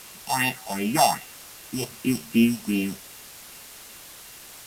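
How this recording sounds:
a buzz of ramps at a fixed pitch in blocks of 16 samples
phaser sweep stages 4, 2.6 Hz, lowest notch 280–1,300 Hz
a quantiser's noise floor 8 bits, dither triangular
Ogg Vorbis

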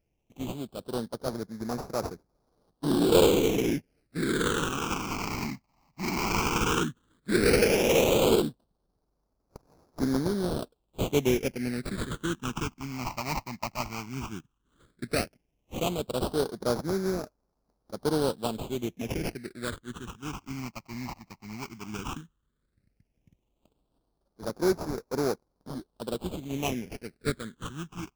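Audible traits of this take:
aliases and images of a low sample rate 1,900 Hz, jitter 20%
phaser sweep stages 8, 0.13 Hz, lowest notch 450–2,900 Hz

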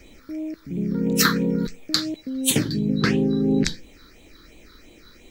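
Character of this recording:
phaser sweep stages 6, 2.9 Hz, lowest notch 700–1,400 Hz
a quantiser's noise floor 12 bits, dither triangular

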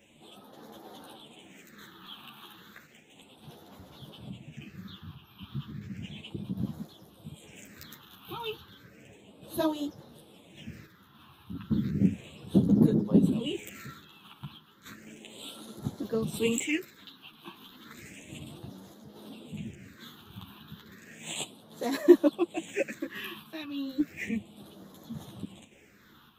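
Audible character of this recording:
phaser sweep stages 6, 0.33 Hz, lowest notch 530–2,500 Hz
sample-and-hold tremolo
a shimmering, thickened sound

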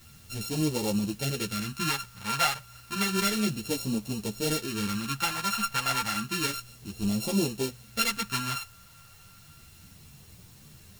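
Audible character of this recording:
a buzz of ramps at a fixed pitch in blocks of 32 samples
phaser sweep stages 2, 0.31 Hz, lowest notch 350–1,400 Hz
a quantiser's noise floor 10 bits, dither triangular
a shimmering, thickened sound

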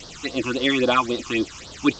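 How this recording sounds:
a quantiser's noise floor 6 bits, dither triangular
phaser sweep stages 8, 3.7 Hz, lowest notch 510–2,400 Hz
G.722

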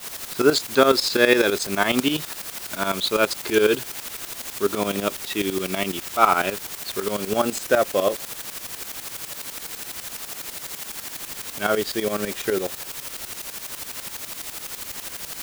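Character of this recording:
a quantiser's noise floor 6 bits, dither triangular
tremolo saw up 12 Hz, depth 80%

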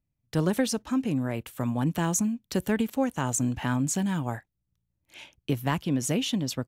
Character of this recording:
background noise floor −81 dBFS
spectral slope −5.0 dB per octave

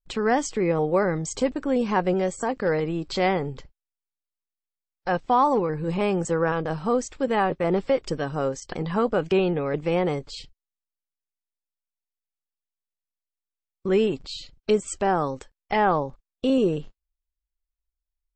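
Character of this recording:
background noise floor −90 dBFS
spectral slope −5.0 dB per octave

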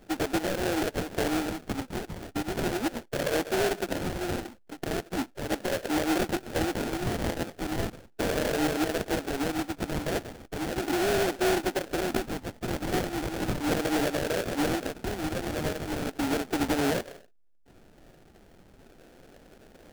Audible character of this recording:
phaser sweep stages 8, 0.37 Hz, lowest notch 420–1,100 Hz
aliases and images of a low sample rate 1,100 Hz, jitter 20%

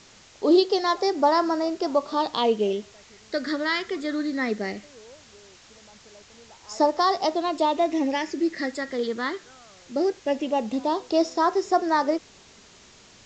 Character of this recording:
phaser sweep stages 8, 0.19 Hz, lowest notch 790–2,800 Hz
a quantiser's noise floor 8 bits, dither triangular
A-law companding

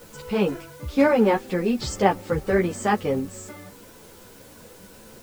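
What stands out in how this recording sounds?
a quantiser's noise floor 8 bits, dither triangular
a shimmering, thickened sound

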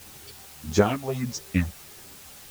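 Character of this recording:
phaser sweep stages 4, 1.6 Hz, lowest notch 270–2,800 Hz
a quantiser's noise floor 8 bits, dither triangular
a shimmering, thickened sound

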